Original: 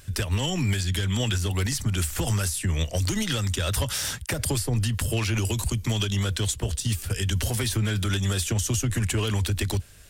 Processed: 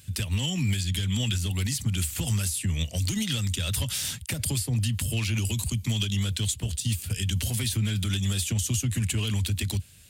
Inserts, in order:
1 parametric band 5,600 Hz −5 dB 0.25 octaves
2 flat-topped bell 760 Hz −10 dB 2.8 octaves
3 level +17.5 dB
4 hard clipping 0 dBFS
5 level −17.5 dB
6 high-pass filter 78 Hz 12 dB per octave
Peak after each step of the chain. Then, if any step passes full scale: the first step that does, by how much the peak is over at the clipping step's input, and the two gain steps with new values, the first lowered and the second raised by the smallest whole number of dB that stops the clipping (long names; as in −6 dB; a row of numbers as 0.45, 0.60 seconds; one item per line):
−15.5, −14.5, +3.0, 0.0, −17.5, −14.5 dBFS
step 3, 3.0 dB
step 3 +14.5 dB, step 5 −14.5 dB